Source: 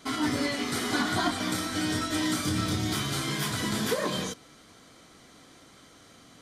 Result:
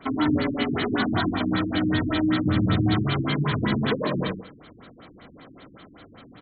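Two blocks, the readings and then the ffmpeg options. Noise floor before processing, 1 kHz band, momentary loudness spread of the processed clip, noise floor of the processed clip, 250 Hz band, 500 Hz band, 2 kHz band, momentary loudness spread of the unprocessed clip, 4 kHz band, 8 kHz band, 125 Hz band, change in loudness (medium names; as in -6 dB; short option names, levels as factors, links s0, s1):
-55 dBFS, +2.5 dB, 4 LU, -50 dBFS, +7.0 dB, +4.5 dB, +2.0 dB, 2 LU, -1.5 dB, under -40 dB, +8.5 dB, +4.5 dB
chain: -filter_complex "[0:a]acrossover=split=230|3000[s0][s1][s2];[s1]acompressor=threshold=0.0316:ratio=6[s3];[s0][s3][s2]amix=inputs=3:normalize=0,asplit=2[s4][s5];[s5]adelay=80,lowpass=f=4200:p=1,volume=0.562,asplit=2[s6][s7];[s7]adelay=80,lowpass=f=4200:p=1,volume=0.25,asplit=2[s8][s9];[s9]adelay=80,lowpass=f=4200:p=1,volume=0.25[s10];[s4][s6][s8][s10]amix=inputs=4:normalize=0,afftfilt=real='re*lt(b*sr/1024,350*pow(4500/350,0.5+0.5*sin(2*PI*5.2*pts/sr)))':imag='im*lt(b*sr/1024,350*pow(4500/350,0.5+0.5*sin(2*PI*5.2*pts/sr)))':win_size=1024:overlap=0.75,volume=2.24"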